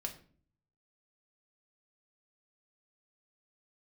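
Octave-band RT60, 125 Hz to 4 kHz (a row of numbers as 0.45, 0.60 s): 0.95, 0.70, 0.55, 0.40, 0.40, 0.35 s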